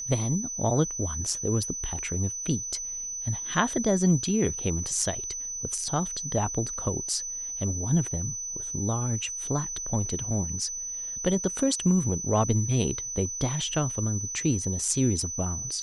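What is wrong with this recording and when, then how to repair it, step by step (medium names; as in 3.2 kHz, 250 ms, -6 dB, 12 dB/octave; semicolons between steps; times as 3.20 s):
whine 6 kHz -32 dBFS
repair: band-stop 6 kHz, Q 30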